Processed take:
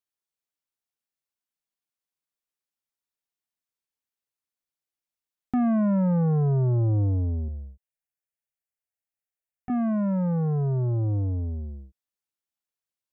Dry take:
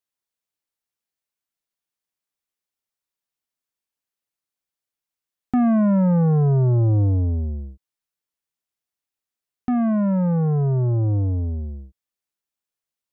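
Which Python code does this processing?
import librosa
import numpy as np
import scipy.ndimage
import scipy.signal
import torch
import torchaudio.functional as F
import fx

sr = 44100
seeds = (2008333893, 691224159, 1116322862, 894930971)

y = fx.fixed_phaser(x, sr, hz=1100.0, stages=6, at=(7.48, 9.7))
y = y * 10.0 ** (-5.0 / 20.0)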